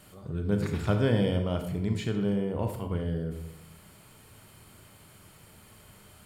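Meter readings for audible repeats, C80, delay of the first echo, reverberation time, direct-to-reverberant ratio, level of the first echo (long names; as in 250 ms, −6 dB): no echo audible, 10.0 dB, no echo audible, 0.80 s, 5.0 dB, no echo audible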